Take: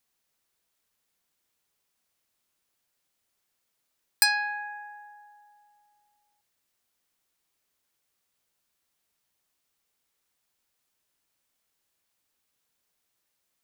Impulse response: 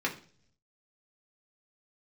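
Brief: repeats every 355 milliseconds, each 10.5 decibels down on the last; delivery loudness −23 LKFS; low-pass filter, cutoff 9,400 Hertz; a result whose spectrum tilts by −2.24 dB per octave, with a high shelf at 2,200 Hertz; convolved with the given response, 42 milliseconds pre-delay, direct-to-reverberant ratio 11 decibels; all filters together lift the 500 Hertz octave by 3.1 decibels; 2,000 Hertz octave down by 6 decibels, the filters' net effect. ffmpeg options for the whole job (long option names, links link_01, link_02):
-filter_complex "[0:a]lowpass=9400,equalizer=frequency=500:width_type=o:gain=5.5,equalizer=frequency=2000:width_type=o:gain=-6.5,highshelf=frequency=2200:gain=-3.5,aecho=1:1:355|710|1065:0.299|0.0896|0.0269,asplit=2[link_01][link_02];[1:a]atrim=start_sample=2205,adelay=42[link_03];[link_02][link_03]afir=irnorm=-1:irlink=0,volume=-19dB[link_04];[link_01][link_04]amix=inputs=2:normalize=0,volume=8dB"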